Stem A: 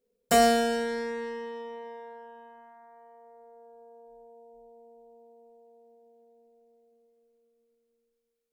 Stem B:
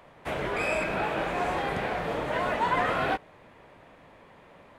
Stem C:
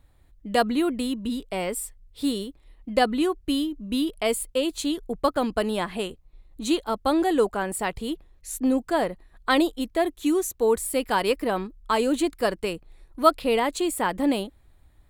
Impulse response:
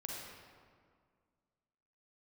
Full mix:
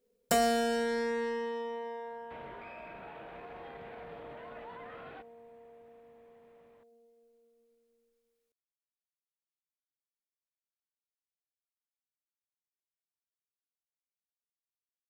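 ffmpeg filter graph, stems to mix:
-filter_complex "[0:a]volume=1.26[s0];[1:a]lowpass=f=4000:w=0.5412,lowpass=f=4000:w=1.3066,alimiter=level_in=1.26:limit=0.0631:level=0:latency=1:release=31,volume=0.794,adelay=2050,volume=0.178[s1];[s0][s1]amix=inputs=2:normalize=0,acompressor=threshold=0.0398:ratio=2.5"

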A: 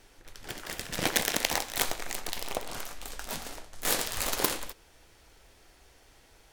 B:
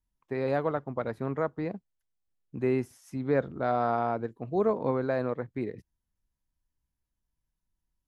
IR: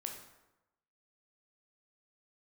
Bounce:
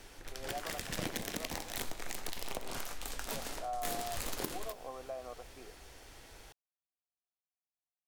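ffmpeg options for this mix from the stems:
-filter_complex "[0:a]acrossover=split=360[s0][s1];[s1]acompressor=threshold=0.0178:ratio=4[s2];[s0][s2]amix=inputs=2:normalize=0,volume=1.33,asplit=2[s3][s4];[s4]volume=0.355[s5];[1:a]asplit=3[s6][s7][s8];[s6]bandpass=f=730:t=q:w=8,volume=1[s9];[s7]bandpass=f=1090:t=q:w=8,volume=0.501[s10];[s8]bandpass=f=2440:t=q:w=8,volume=0.355[s11];[s9][s10][s11]amix=inputs=3:normalize=0,volume=0.794[s12];[2:a]atrim=start_sample=2205[s13];[s5][s13]afir=irnorm=-1:irlink=0[s14];[s3][s12][s14]amix=inputs=3:normalize=0,acompressor=threshold=0.01:ratio=2"

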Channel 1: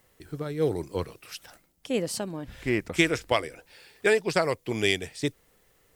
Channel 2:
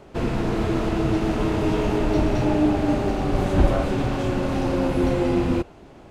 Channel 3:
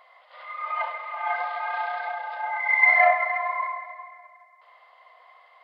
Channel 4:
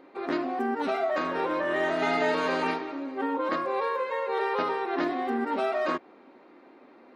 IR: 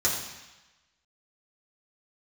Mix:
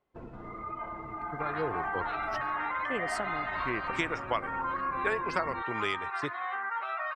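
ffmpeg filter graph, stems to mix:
-filter_complex "[0:a]adelay=1000,volume=0.422[s0];[1:a]equalizer=f=1400:w=0.51:g=6,acompressor=threshold=0.0398:ratio=3,volume=0.211[s1];[2:a]acompressor=threshold=0.0708:ratio=6,volume=0.376,asplit=2[s2][s3];[s3]volume=0.168[s4];[3:a]highpass=1400,acompressor=threshold=0.02:ratio=6,alimiter=level_in=2.99:limit=0.0631:level=0:latency=1:release=166,volume=0.335,adelay=1250,volume=1[s5];[s1][s2]amix=inputs=2:normalize=0,acompressor=threshold=0.0112:ratio=6,volume=1[s6];[s0][s5]amix=inputs=2:normalize=0,equalizer=f=1200:t=o:w=1.4:g=14.5,acompressor=threshold=0.0282:ratio=2,volume=1[s7];[4:a]atrim=start_sample=2205[s8];[s4][s8]afir=irnorm=-1:irlink=0[s9];[s6][s7][s9]amix=inputs=3:normalize=0,agate=range=0.398:threshold=0.00631:ratio=16:detection=peak,afftdn=nr=16:nf=-48"

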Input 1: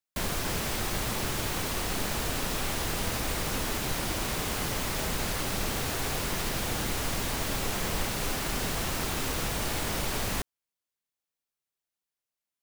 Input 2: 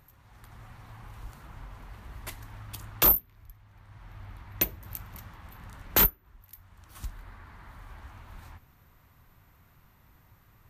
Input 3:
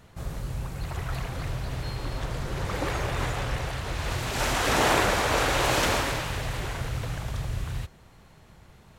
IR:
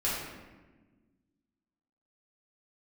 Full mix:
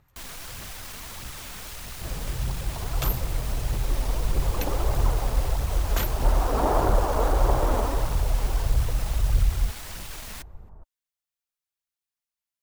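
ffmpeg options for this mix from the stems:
-filter_complex "[0:a]equalizer=f=330:t=o:w=2:g=-9,aeval=exprs='0.119*sin(PI/2*3.98*val(0)/0.119)':c=same,volume=0.126[s0];[1:a]lowpass=10000,volume=0.531[s1];[2:a]lowpass=f=1100:w=0.5412,lowpass=f=1100:w=1.3066,asubboost=boost=5:cutoff=56,adelay=1850,volume=1.06[s2];[s0][s1][s2]amix=inputs=3:normalize=0,aphaser=in_gain=1:out_gain=1:delay=4.9:decay=0.35:speed=1.6:type=triangular"

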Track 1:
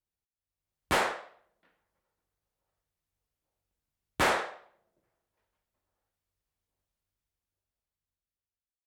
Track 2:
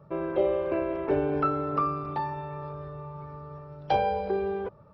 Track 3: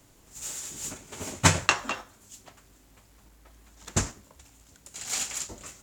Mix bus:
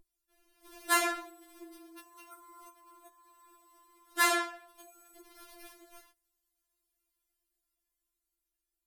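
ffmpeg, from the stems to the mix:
-filter_complex "[0:a]aeval=exprs='val(0)+0.002*(sin(2*PI*50*n/s)+sin(2*PI*2*50*n/s)/2+sin(2*PI*3*50*n/s)/3+sin(2*PI*4*50*n/s)/4+sin(2*PI*5*50*n/s)/5)':c=same,volume=1.33[s0];[1:a]highpass=f=310:w=0.5412,highpass=f=310:w=1.3066,bandreject=f=490:w=12,aecho=1:1:5.7:0.8,adelay=900,volume=0.188[s1];[2:a]acompressor=threshold=0.0251:ratio=10,adelay=300,volume=0.316[s2];[s1][s2]amix=inputs=2:normalize=0,acrusher=samples=6:mix=1:aa=0.000001,acompressor=threshold=0.00501:ratio=6,volume=1[s3];[s0][s3]amix=inputs=2:normalize=0,equalizer=f=12000:t=o:w=1.2:g=11.5,afftfilt=real='re*4*eq(mod(b,16),0)':imag='im*4*eq(mod(b,16),0)':win_size=2048:overlap=0.75"

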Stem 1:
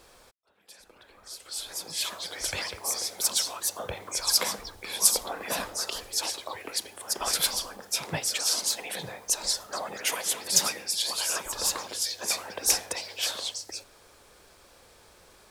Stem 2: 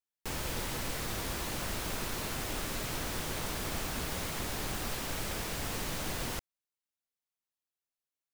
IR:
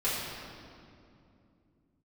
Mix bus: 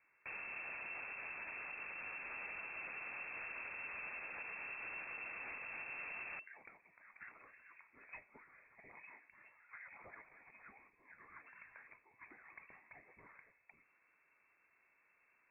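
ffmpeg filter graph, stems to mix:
-filter_complex "[0:a]acompressor=threshold=0.02:ratio=2,volume=0.141[s0];[1:a]volume=0.562[s1];[s0][s1]amix=inputs=2:normalize=0,lowpass=f=2300:t=q:w=0.5098,lowpass=f=2300:t=q:w=0.6013,lowpass=f=2300:t=q:w=0.9,lowpass=f=2300:t=q:w=2.563,afreqshift=-2700,alimiter=level_in=5.01:limit=0.0631:level=0:latency=1:release=151,volume=0.2"

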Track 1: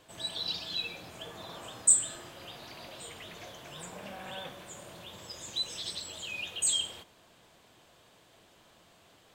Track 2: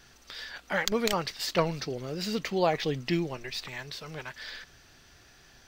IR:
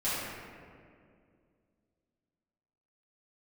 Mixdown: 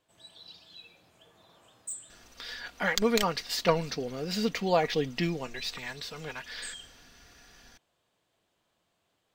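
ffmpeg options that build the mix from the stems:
-filter_complex "[0:a]asoftclip=type=hard:threshold=0.158,volume=0.168[s0];[1:a]aecho=1:1:4.2:0.43,adelay=2100,volume=1[s1];[s0][s1]amix=inputs=2:normalize=0"

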